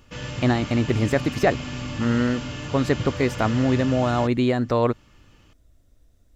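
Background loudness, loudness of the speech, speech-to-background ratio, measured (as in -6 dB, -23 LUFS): -32.0 LUFS, -23.0 LUFS, 9.0 dB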